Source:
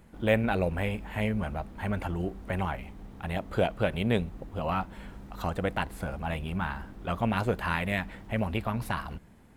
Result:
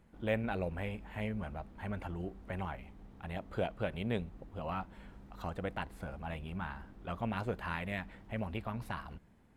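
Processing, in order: high shelf 6500 Hz -6.5 dB; gain -8.5 dB

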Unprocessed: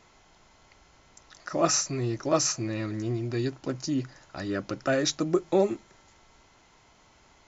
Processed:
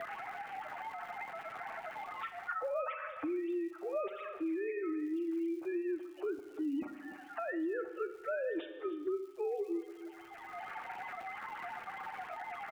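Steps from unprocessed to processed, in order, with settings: sine-wave speech; notch 1000 Hz, Q 8.8; low-pass opened by the level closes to 2500 Hz, open at -24 dBFS; low shelf 210 Hz +6 dB; reverse; compressor 5:1, threshold -36 dBFS, peak gain reduction 20 dB; reverse; time stretch by phase-locked vocoder 1.7×; crackle 310/s -59 dBFS; on a send: echo 0.298 s -20.5 dB; on the sum: Schroeder reverb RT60 0.83 s, combs from 30 ms, DRR 9.5 dB; three-band squash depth 100%; gain +1 dB

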